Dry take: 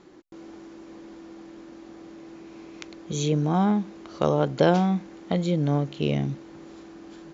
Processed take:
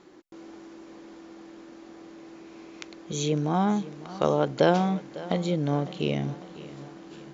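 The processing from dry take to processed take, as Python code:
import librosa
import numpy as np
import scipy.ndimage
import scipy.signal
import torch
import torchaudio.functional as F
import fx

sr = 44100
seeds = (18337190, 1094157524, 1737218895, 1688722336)

p1 = fx.low_shelf(x, sr, hz=180.0, db=-7.0)
y = p1 + fx.echo_feedback(p1, sr, ms=552, feedback_pct=51, wet_db=-17.0, dry=0)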